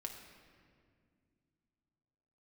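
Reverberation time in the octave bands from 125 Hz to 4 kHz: 3.5, 3.4, 2.5, 1.9, 1.8, 1.4 seconds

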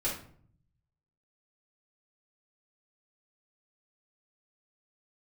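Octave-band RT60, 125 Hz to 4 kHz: 1.3, 0.85, 0.60, 0.50, 0.45, 0.35 seconds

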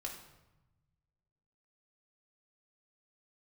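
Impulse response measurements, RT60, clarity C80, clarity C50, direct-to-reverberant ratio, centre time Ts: 1.0 s, 9.0 dB, 6.5 dB, −2.0 dB, 29 ms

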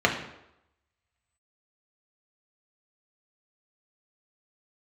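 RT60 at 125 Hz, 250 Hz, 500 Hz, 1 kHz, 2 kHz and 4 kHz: 0.70, 0.75, 0.85, 0.85, 0.75, 0.65 seconds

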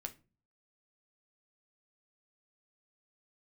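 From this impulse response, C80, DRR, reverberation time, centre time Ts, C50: 24.5 dB, 5.5 dB, non-exponential decay, 6 ms, 17.5 dB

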